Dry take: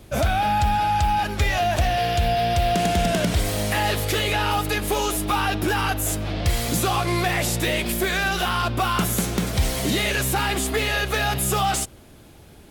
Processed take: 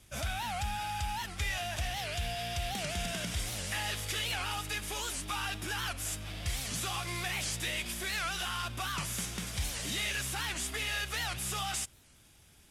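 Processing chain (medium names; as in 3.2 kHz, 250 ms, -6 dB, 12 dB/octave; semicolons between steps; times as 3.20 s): CVSD coder 64 kbps; amplifier tone stack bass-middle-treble 5-5-5; band-stop 4.2 kHz, Q 11; warped record 78 rpm, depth 250 cents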